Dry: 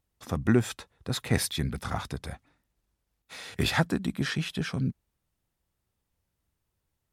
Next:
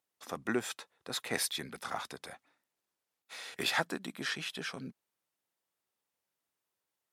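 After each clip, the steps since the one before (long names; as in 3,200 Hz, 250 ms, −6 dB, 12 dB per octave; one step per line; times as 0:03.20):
Bessel high-pass filter 480 Hz, order 2
level −2.5 dB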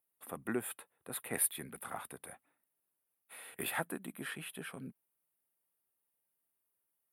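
drawn EQ curve 160 Hz 0 dB, 2,900 Hz −5 dB, 6,000 Hz −25 dB, 9,600 Hz +9 dB
level −2 dB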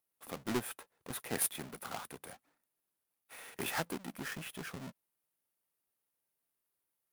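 each half-wave held at its own peak
level −3.5 dB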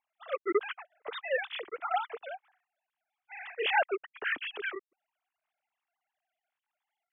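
three sine waves on the formant tracks
level +7 dB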